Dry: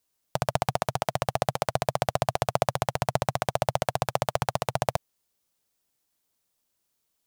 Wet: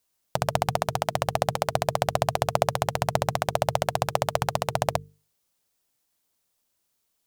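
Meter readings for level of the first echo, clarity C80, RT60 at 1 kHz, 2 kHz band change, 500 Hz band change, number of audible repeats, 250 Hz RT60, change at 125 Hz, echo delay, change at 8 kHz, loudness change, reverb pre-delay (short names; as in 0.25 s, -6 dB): none, none, none, +2.0 dB, +2.0 dB, none, none, +1.0 dB, none, +2.0 dB, +2.0 dB, none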